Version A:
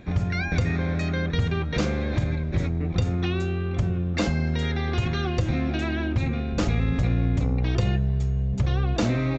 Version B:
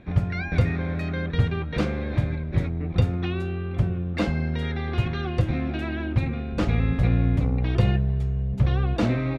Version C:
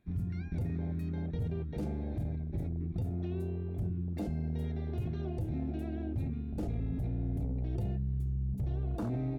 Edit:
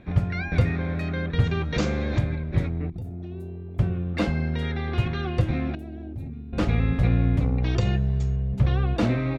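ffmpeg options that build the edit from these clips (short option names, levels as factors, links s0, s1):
-filter_complex "[0:a]asplit=2[s0][s1];[2:a]asplit=2[s2][s3];[1:a]asplit=5[s4][s5][s6][s7][s8];[s4]atrim=end=1.442[s9];[s0]atrim=start=1.438:end=2.192[s10];[s5]atrim=start=2.188:end=2.902[s11];[s2]atrim=start=2.898:end=3.792[s12];[s6]atrim=start=3.788:end=5.752[s13];[s3]atrim=start=5.748:end=6.532[s14];[s7]atrim=start=6.528:end=7.632[s15];[s1]atrim=start=7.628:end=8.362[s16];[s8]atrim=start=8.358[s17];[s9][s10]acrossfade=d=0.004:c1=hsin:c2=hsin[s18];[s18][s11]acrossfade=d=0.004:c1=hsin:c2=hsin[s19];[s19][s12]acrossfade=d=0.004:c1=hsin:c2=hsin[s20];[s20][s13]acrossfade=d=0.004:c1=hsin:c2=hsin[s21];[s21][s14]acrossfade=d=0.004:c1=hsin:c2=hsin[s22];[s22][s15]acrossfade=d=0.004:c1=hsin:c2=hsin[s23];[s23][s16]acrossfade=d=0.004:c1=hsin:c2=hsin[s24];[s24][s17]acrossfade=d=0.004:c1=hsin:c2=hsin"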